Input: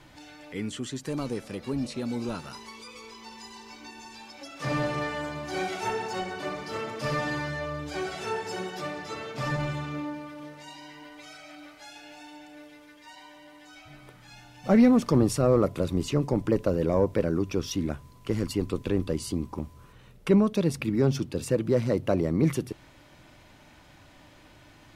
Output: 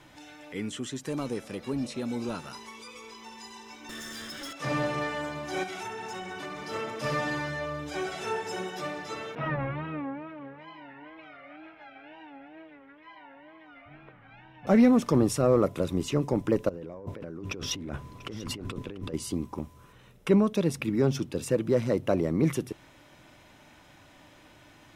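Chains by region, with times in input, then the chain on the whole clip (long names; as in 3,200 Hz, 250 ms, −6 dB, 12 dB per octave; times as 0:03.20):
0:03.89–0:04.53: lower of the sound and its delayed copy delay 0.59 ms + notch filter 2,500 Hz, Q 19 + leveller curve on the samples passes 3
0:05.63–0:06.62: parametric band 540 Hz −6.5 dB 0.74 octaves + downward compressor, threshold −33 dBFS
0:09.35–0:14.67: low-pass filter 2,500 Hz 24 dB per octave + tape wow and flutter 140 cents
0:16.69–0:19.14: high-shelf EQ 5,500 Hz −11 dB + compressor whose output falls as the input rises −36 dBFS + single-tap delay 691 ms −17 dB
whole clip: low-shelf EQ 100 Hz −7.5 dB; notch filter 4,500 Hz, Q 10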